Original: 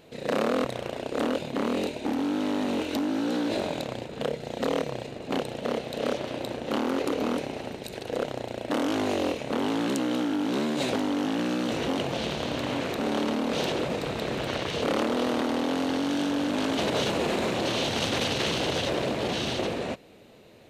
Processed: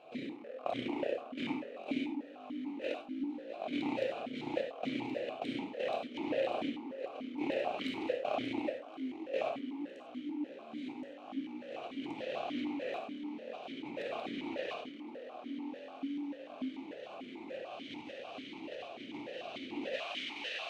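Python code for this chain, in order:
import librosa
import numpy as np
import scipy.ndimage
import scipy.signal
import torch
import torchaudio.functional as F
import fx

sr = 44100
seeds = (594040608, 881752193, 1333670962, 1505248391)

p1 = x + fx.echo_wet_highpass(x, sr, ms=1073, feedback_pct=61, hz=1500.0, wet_db=-5, dry=0)
p2 = fx.over_compress(p1, sr, threshold_db=-33.0, ratio=-0.5)
p3 = fx.rev_gated(p2, sr, seeds[0], gate_ms=120, shape='flat', drr_db=2.0)
p4 = fx.vowel_held(p3, sr, hz=6.8)
y = F.gain(torch.from_numpy(p4), 2.5).numpy()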